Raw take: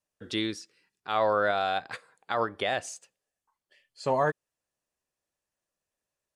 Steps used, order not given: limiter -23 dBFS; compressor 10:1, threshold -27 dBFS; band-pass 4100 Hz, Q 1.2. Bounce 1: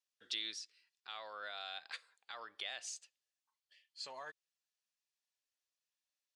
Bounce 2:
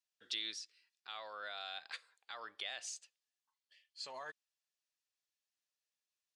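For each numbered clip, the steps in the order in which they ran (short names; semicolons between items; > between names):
compressor > limiter > band-pass; limiter > band-pass > compressor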